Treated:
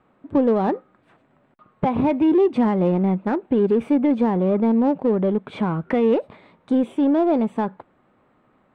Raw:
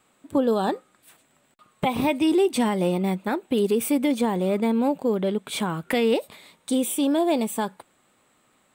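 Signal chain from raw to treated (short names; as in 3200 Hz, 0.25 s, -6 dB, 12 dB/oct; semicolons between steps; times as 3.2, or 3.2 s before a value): LPF 1500 Hz 12 dB/oct; low shelf 380 Hz +4 dB; in parallel at -5 dB: soft clip -26 dBFS, distortion -7 dB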